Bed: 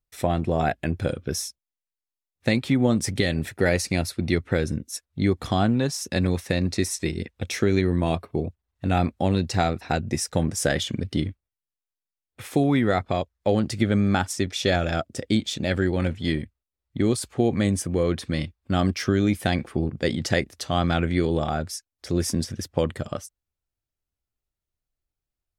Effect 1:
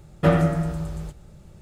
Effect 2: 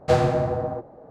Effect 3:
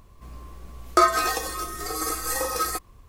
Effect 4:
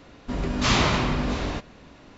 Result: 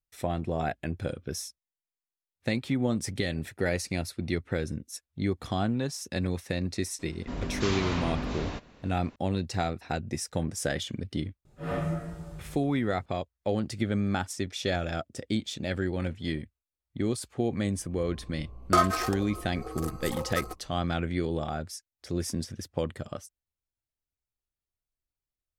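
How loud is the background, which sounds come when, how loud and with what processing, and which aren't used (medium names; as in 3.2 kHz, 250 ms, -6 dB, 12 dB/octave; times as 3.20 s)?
bed -7 dB
6.99 s: add 4 -6.5 dB + peak limiter -16 dBFS
11.45 s: add 1 -11 dB + phase randomisation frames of 200 ms
17.76 s: add 3 -4.5 dB + local Wiener filter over 25 samples
not used: 2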